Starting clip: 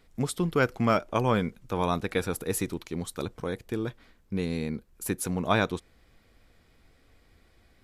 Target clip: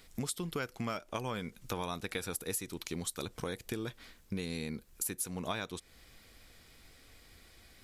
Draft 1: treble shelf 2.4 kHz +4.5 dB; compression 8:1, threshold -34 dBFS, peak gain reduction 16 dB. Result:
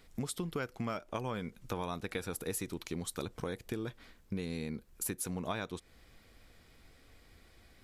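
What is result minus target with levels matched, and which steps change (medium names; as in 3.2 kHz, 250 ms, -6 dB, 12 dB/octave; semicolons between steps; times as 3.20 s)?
4 kHz band -3.0 dB
change: treble shelf 2.4 kHz +12.5 dB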